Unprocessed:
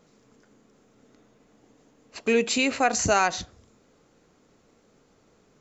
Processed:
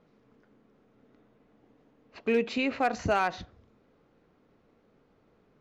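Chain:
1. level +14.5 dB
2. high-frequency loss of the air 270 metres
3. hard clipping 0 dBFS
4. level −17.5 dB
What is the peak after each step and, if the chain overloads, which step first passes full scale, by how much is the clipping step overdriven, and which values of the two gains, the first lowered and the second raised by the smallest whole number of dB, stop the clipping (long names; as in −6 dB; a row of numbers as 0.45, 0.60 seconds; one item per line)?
+5.0, +3.5, 0.0, −17.5 dBFS
step 1, 3.5 dB
step 1 +10.5 dB, step 4 −13.5 dB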